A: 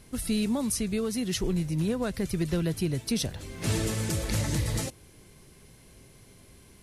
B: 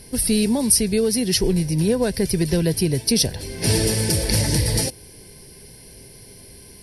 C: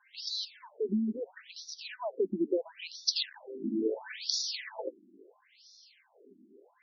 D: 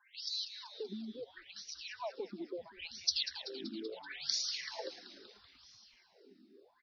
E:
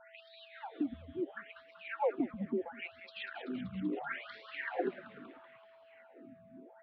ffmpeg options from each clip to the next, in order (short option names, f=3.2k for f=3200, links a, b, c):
-af "superequalizer=7b=1.58:10b=0.316:14b=2.51:15b=0.631:16b=2.51,volume=7.5dB"
-af "afftfilt=real='re*between(b*sr/1024,250*pow(4900/250,0.5+0.5*sin(2*PI*0.74*pts/sr))/1.41,250*pow(4900/250,0.5+0.5*sin(2*PI*0.74*pts/sr))*1.41)':imag='im*between(b*sr/1024,250*pow(4900/250,0.5+0.5*sin(2*PI*0.74*pts/sr))/1.41,250*pow(4900/250,0.5+0.5*sin(2*PI*0.74*pts/sr))*1.41)':win_size=1024:overlap=0.75,volume=-4.5dB"
-filter_complex "[0:a]acrossover=split=780[a][b];[a]acompressor=threshold=-39dB:ratio=6[c];[b]asplit=8[d][e][f][g][h][i][j][k];[e]adelay=191,afreqshift=-150,volume=-11dB[l];[f]adelay=382,afreqshift=-300,volume=-15.2dB[m];[g]adelay=573,afreqshift=-450,volume=-19.3dB[n];[h]adelay=764,afreqshift=-600,volume=-23.5dB[o];[i]adelay=955,afreqshift=-750,volume=-27.6dB[p];[j]adelay=1146,afreqshift=-900,volume=-31.8dB[q];[k]adelay=1337,afreqshift=-1050,volume=-35.9dB[r];[d][l][m][n][o][p][q][r]amix=inputs=8:normalize=0[s];[c][s]amix=inputs=2:normalize=0,volume=-3dB"
-filter_complex "[0:a]highpass=f=240:t=q:w=0.5412,highpass=f=240:t=q:w=1.307,lowpass=f=3.1k:t=q:w=0.5176,lowpass=f=3.1k:t=q:w=0.7071,lowpass=f=3.1k:t=q:w=1.932,afreqshift=-140,acrossover=split=200 2200:gain=0.141 1 0.0891[a][b][c];[a][b][c]amix=inputs=3:normalize=0,aeval=exprs='val(0)+0.000398*sin(2*PI*660*n/s)':c=same,volume=10dB"